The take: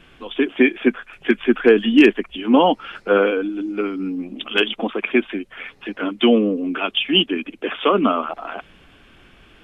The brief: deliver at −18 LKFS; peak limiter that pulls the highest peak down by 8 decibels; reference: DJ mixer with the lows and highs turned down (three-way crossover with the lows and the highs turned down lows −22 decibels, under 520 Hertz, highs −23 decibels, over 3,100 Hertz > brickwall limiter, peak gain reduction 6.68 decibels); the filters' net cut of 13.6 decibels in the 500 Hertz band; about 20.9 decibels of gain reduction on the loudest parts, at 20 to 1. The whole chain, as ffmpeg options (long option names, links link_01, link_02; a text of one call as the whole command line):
ffmpeg -i in.wav -filter_complex "[0:a]equalizer=frequency=500:width_type=o:gain=-7.5,acompressor=threshold=-30dB:ratio=20,alimiter=level_in=2dB:limit=-24dB:level=0:latency=1,volume=-2dB,acrossover=split=520 3100:gain=0.0794 1 0.0708[link_01][link_02][link_03];[link_01][link_02][link_03]amix=inputs=3:normalize=0,volume=26.5dB,alimiter=limit=-6.5dB:level=0:latency=1" out.wav